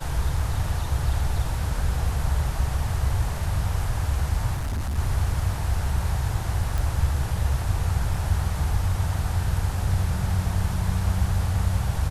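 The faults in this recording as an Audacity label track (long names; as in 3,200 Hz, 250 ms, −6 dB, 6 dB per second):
4.550000	4.990000	clipping −24 dBFS
6.780000	6.780000	click
8.140000	8.140000	drop-out 3.1 ms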